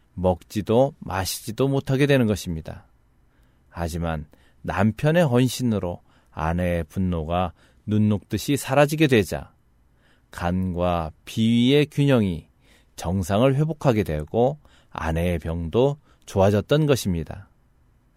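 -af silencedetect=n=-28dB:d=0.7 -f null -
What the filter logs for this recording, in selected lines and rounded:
silence_start: 2.73
silence_end: 3.77 | silence_duration: 1.04
silence_start: 9.42
silence_end: 10.33 | silence_duration: 0.91
silence_start: 17.34
silence_end: 18.17 | silence_duration: 0.83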